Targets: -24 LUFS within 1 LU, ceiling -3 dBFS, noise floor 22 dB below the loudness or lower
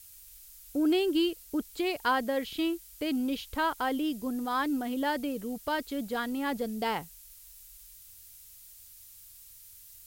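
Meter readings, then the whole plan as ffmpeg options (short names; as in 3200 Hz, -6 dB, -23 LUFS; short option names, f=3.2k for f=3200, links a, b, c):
noise floor -52 dBFS; noise floor target -53 dBFS; loudness -31.0 LUFS; peak -15.5 dBFS; loudness target -24.0 LUFS
-> -af "afftdn=nr=6:nf=-52"
-af "volume=7dB"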